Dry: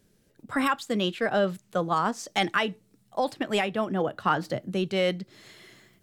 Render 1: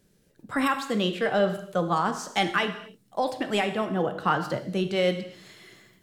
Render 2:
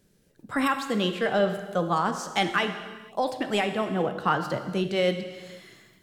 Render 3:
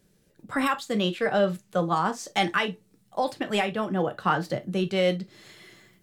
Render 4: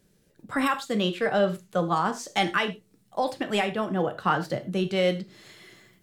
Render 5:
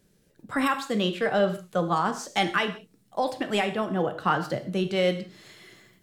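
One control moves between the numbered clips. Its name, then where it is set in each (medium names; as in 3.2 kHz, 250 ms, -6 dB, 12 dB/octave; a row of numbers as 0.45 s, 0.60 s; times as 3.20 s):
gated-style reverb, gate: 300 ms, 520 ms, 80 ms, 130 ms, 200 ms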